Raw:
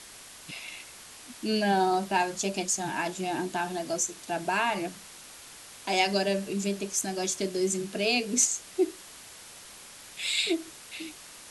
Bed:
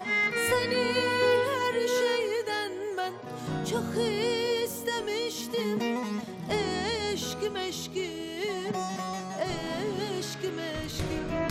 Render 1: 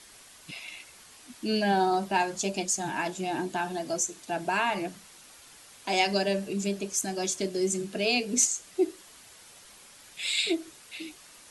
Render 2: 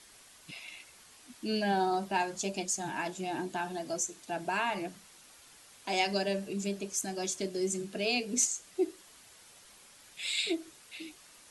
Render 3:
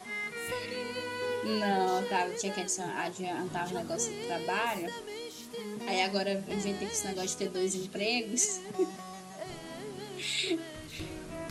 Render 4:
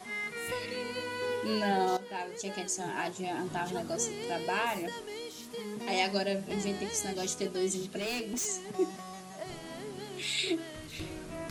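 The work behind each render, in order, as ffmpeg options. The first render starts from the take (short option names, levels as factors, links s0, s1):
-af "afftdn=nr=6:nf=-48"
-af "volume=0.596"
-filter_complex "[1:a]volume=0.299[s0];[0:a][s0]amix=inputs=2:normalize=0"
-filter_complex "[0:a]asplit=3[s0][s1][s2];[s0]afade=t=out:st=7.99:d=0.02[s3];[s1]asoftclip=type=hard:threshold=0.0266,afade=t=in:st=7.99:d=0.02,afade=t=out:st=8.45:d=0.02[s4];[s2]afade=t=in:st=8.45:d=0.02[s5];[s3][s4][s5]amix=inputs=3:normalize=0,asplit=2[s6][s7];[s6]atrim=end=1.97,asetpts=PTS-STARTPTS,afade=t=out:st=1.966:d=0.004:c=hsin:silence=0.223872[s8];[s7]atrim=start=1.97,asetpts=PTS-STARTPTS,afade=t=in:d=0.93:silence=0.223872[s9];[s8][s9]concat=n=2:v=0:a=1"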